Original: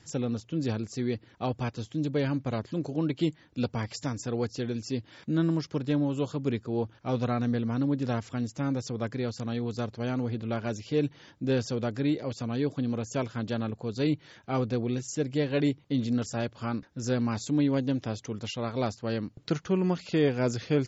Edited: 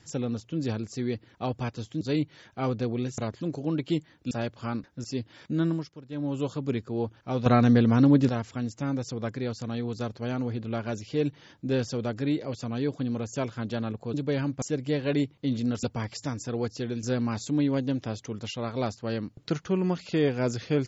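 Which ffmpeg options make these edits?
-filter_complex "[0:a]asplit=13[a][b][c][d][e][f][g][h][i][j][k][l][m];[a]atrim=end=2.012[n];[b]atrim=start=13.918:end=15.092[o];[c]atrim=start=2.488:end=3.622[p];[d]atrim=start=16.298:end=17.032[q];[e]atrim=start=4.818:end=5.72,asetpts=PTS-STARTPTS,afade=t=out:st=0.642:d=0.26:silence=0.188365[r];[f]atrim=start=5.72:end=5.87,asetpts=PTS-STARTPTS,volume=-14.5dB[s];[g]atrim=start=5.87:end=7.242,asetpts=PTS-STARTPTS,afade=t=in:d=0.26:silence=0.188365[t];[h]atrim=start=7.238:end=8.072,asetpts=PTS-STARTPTS,volume=8.5dB[u];[i]atrim=start=8.068:end=13.922[v];[j]atrim=start=2.008:end=2.492[w];[k]atrim=start=15.088:end=16.302[x];[l]atrim=start=3.618:end=4.822[y];[m]atrim=start=17.028[z];[n][o]acrossfade=d=0.004:c1=hsin:c2=hsin[aa];[aa][p]acrossfade=d=0.004:c1=hsin:c2=hsin[ab];[ab][q]acrossfade=d=0.004:c1=hsin:c2=hsin[ac];[r][s][t]concat=n=3:v=0:a=1[ad];[ac][ad]acrossfade=d=0.004:c1=hsin:c2=hsin[ae];[ae][u]acrossfade=d=0.004:c1=hsin:c2=hsin[af];[af][v]acrossfade=d=0.004:c1=hsin:c2=hsin[ag];[ag][w]acrossfade=d=0.004:c1=hsin:c2=hsin[ah];[ah][x]acrossfade=d=0.004:c1=hsin:c2=hsin[ai];[ai][y]acrossfade=d=0.004:c1=hsin:c2=hsin[aj];[aj][z]acrossfade=d=0.004:c1=hsin:c2=hsin"

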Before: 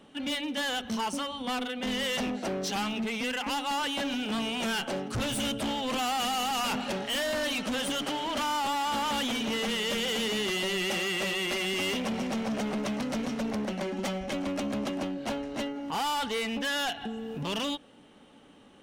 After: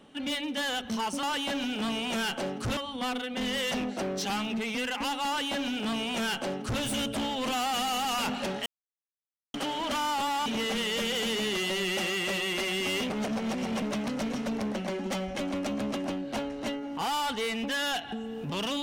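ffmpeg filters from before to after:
-filter_complex "[0:a]asplit=8[a][b][c][d][e][f][g][h];[a]atrim=end=1.232[i];[b]atrim=start=3.728:end=5.272[j];[c]atrim=start=1.228:end=7.12,asetpts=PTS-STARTPTS,afade=t=out:st=5.888:d=0.004:c=hsin[k];[d]atrim=start=7.12:end=8,asetpts=PTS-STARTPTS,volume=0[l];[e]atrim=start=8:end=8.922,asetpts=PTS-STARTPTS,afade=t=in:d=0.004:c=hsin[m];[f]atrim=start=9.388:end=12.032[n];[g]atrim=start=12.028:end=12.752,asetpts=PTS-STARTPTS,areverse[o];[h]atrim=start=12.748[p];[i][j]acrossfade=d=0.004:c1=hsin:c2=hsin[q];[k][l][m]concat=n=3:v=0:a=1[r];[q][r]acrossfade=d=0.004:c1=hsin:c2=hsin[s];[s][n]acrossfade=d=0.004:c1=hsin:c2=hsin[t];[t][o]acrossfade=d=0.004:c1=hsin:c2=hsin[u];[u][p]acrossfade=d=0.004:c1=hsin:c2=hsin"

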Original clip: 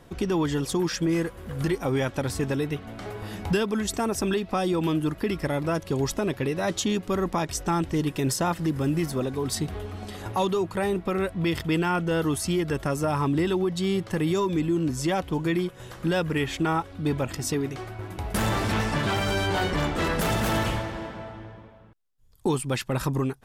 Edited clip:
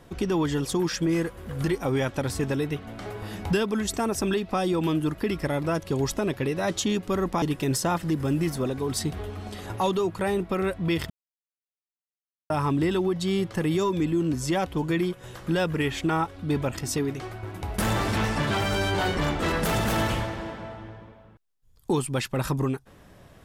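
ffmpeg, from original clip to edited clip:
-filter_complex "[0:a]asplit=4[a][b][c][d];[a]atrim=end=7.422[e];[b]atrim=start=7.978:end=11.66,asetpts=PTS-STARTPTS,afade=t=out:st=3.678:d=0.004:c=hsin[f];[c]atrim=start=11.66:end=13.06,asetpts=PTS-STARTPTS,volume=0[g];[d]atrim=start=13.06,asetpts=PTS-STARTPTS,afade=t=in:d=0.004:c=hsin[h];[f][g][h]concat=n=3:v=0:a=1[i];[e][i]acrossfade=d=0.004:c1=hsin:c2=hsin"

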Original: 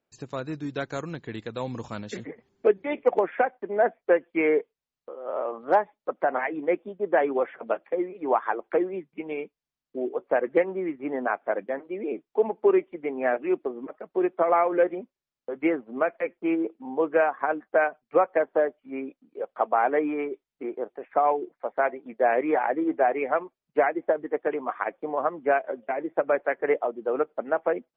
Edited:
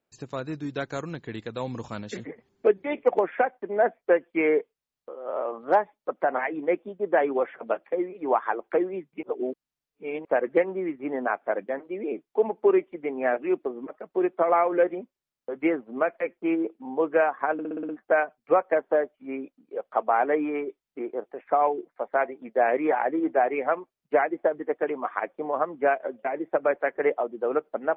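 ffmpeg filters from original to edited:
-filter_complex "[0:a]asplit=9[a][b][c][d][e][f][g][h][i];[a]atrim=end=9.232[j];[b]atrim=start=9.228:end=10.252,asetpts=PTS-STARTPTS,areverse[k];[c]atrim=start=10.248:end=17.592[l];[d]atrim=start=17.528:end=17.592[m];[e]atrim=start=17.528:end=17.592[n];[f]atrim=start=17.528:end=17.592[o];[g]atrim=start=17.528:end=17.592[p];[h]atrim=start=17.528:end=17.592[q];[i]atrim=start=17.528[r];[j][k]acrossfade=d=0.004:c1=hsin:c2=hsin[s];[s][l]acrossfade=d=0.004:c1=hsin:c2=hsin[t];[t][m]acrossfade=d=0.004:c1=hsin:c2=hsin[u];[u][n]acrossfade=d=0.004:c1=hsin:c2=hsin[v];[v][o]acrossfade=d=0.004:c1=hsin:c2=hsin[w];[w][p]acrossfade=d=0.004:c1=hsin:c2=hsin[x];[x][q]acrossfade=d=0.004:c1=hsin:c2=hsin[y];[y][r]acrossfade=d=0.004:c1=hsin:c2=hsin"

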